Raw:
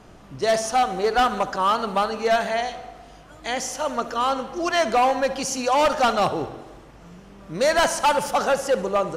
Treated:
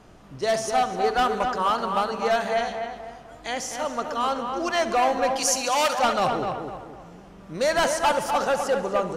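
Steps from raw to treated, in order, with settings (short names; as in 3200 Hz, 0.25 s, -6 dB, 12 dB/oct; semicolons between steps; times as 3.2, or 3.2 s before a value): 5.36–5.99 tilt +3 dB/oct; on a send: darkening echo 0.253 s, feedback 39%, low-pass 2100 Hz, level -5 dB; on the sum: gain -3 dB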